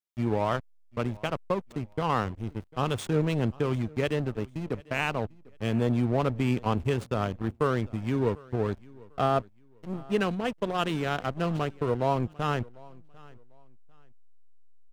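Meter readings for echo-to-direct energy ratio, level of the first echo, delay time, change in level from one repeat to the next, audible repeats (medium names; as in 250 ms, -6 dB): -23.0 dB, -23.5 dB, 747 ms, -11.5 dB, 2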